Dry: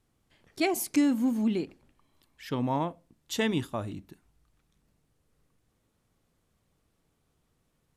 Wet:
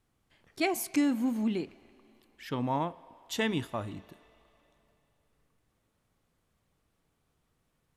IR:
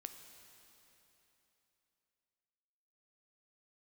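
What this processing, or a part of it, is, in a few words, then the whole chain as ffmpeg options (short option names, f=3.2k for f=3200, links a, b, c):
filtered reverb send: -filter_complex "[0:a]asplit=2[a][b];[b]highpass=550,lowpass=3.9k[c];[1:a]atrim=start_sample=2205[d];[c][d]afir=irnorm=-1:irlink=0,volume=-4dB[e];[a][e]amix=inputs=2:normalize=0,volume=-2.5dB"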